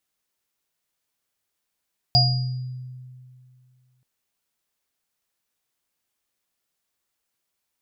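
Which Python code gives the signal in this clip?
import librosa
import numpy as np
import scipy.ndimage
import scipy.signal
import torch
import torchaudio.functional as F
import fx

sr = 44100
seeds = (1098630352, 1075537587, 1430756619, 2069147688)

y = fx.additive_free(sr, length_s=1.88, hz=127.0, level_db=-16.0, upper_db=(-4.0, 3), decay_s=2.35, upper_decays_s=(0.48, 0.69), upper_hz=(709.0, 4850.0))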